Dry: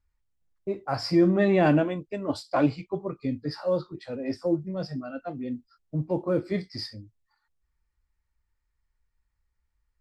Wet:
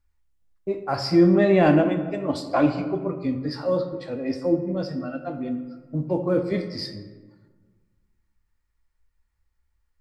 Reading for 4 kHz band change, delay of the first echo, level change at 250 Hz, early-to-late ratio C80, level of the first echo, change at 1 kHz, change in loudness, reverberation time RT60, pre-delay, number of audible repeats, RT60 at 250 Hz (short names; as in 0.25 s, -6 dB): +3.0 dB, none, +4.0 dB, 11.0 dB, none, +3.5 dB, +4.0 dB, 1.4 s, 3 ms, none, 1.7 s